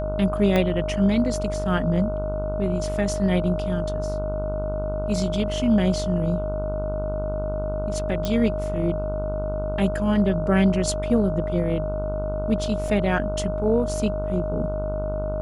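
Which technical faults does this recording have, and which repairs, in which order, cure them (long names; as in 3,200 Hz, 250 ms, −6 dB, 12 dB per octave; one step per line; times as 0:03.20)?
mains buzz 50 Hz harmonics 30 −29 dBFS
whistle 620 Hz −27 dBFS
0:00.56: click −10 dBFS
0:08.25: click −12 dBFS
0:12.88: drop-out 3.5 ms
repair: click removal
hum removal 50 Hz, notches 30
notch filter 620 Hz, Q 30
repair the gap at 0:12.88, 3.5 ms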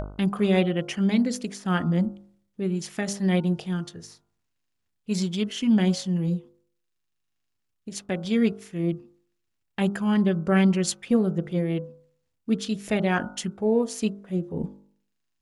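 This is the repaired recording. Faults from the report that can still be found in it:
0:00.56: click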